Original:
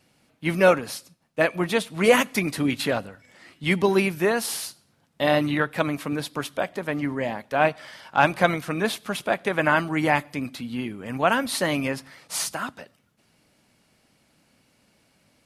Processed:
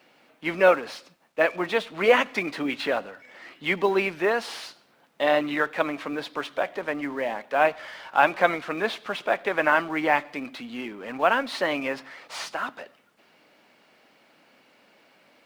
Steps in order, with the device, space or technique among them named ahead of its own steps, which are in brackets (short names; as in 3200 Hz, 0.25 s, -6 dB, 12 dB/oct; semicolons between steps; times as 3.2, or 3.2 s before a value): phone line with mismatched companding (BPF 370–3200 Hz; G.711 law mismatch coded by mu)